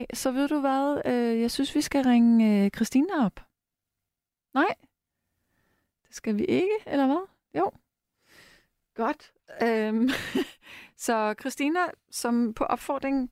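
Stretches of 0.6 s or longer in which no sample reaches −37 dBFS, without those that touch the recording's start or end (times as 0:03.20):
0:03.40–0:04.55
0:04.73–0:06.14
0:07.69–0:08.99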